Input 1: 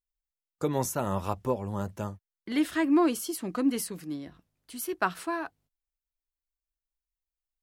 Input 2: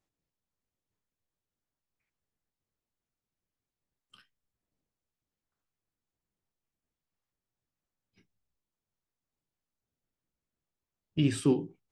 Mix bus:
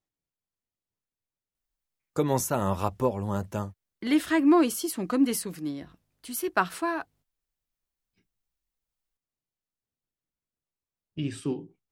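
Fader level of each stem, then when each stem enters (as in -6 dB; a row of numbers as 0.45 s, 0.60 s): +3.0 dB, -5.0 dB; 1.55 s, 0.00 s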